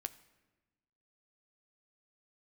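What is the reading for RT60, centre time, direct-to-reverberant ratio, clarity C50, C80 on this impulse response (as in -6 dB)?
1.2 s, 4 ms, 10.5 dB, 16.5 dB, 18.5 dB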